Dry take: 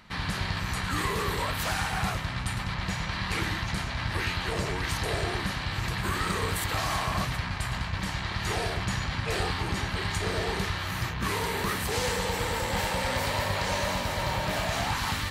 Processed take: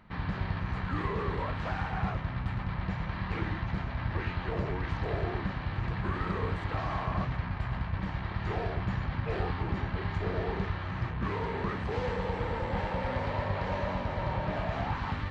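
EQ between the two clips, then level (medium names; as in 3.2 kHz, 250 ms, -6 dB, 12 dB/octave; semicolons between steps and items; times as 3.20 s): tape spacing loss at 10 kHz 42 dB; 0.0 dB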